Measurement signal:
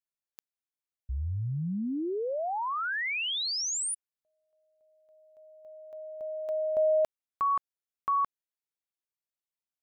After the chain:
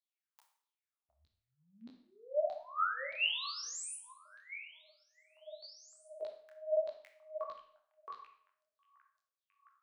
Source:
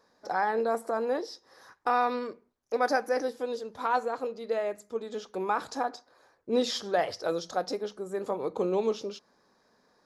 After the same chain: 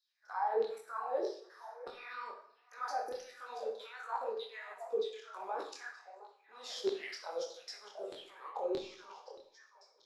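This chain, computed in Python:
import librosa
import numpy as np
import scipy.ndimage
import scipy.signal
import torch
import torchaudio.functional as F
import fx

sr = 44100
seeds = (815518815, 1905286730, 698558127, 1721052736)

y = fx.level_steps(x, sr, step_db=20)
y = fx.echo_stepped(y, sr, ms=711, hz=790.0, octaves=1.4, feedback_pct=70, wet_db=-10.0)
y = fx.filter_lfo_highpass(y, sr, shape='saw_down', hz=1.6, low_hz=370.0, high_hz=4100.0, q=7.7)
y = fx.rev_schroeder(y, sr, rt60_s=0.56, comb_ms=28, drr_db=5.0)
y = fx.detune_double(y, sr, cents=50)
y = y * 10.0 ** (-1.0 / 20.0)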